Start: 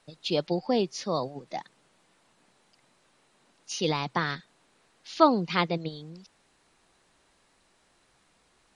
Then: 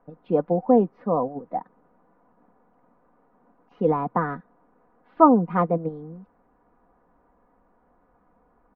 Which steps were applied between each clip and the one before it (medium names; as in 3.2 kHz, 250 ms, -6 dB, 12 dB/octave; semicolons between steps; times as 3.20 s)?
low-pass 1.2 kHz 24 dB/octave; comb 4.1 ms, depth 54%; trim +5.5 dB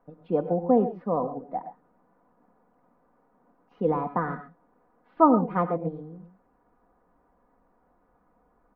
gated-style reverb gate 150 ms rising, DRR 10 dB; trim -3.5 dB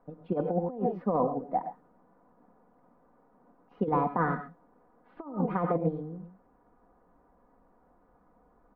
compressor with a negative ratio -26 dBFS, ratio -0.5; tape noise reduction on one side only decoder only; trim -1 dB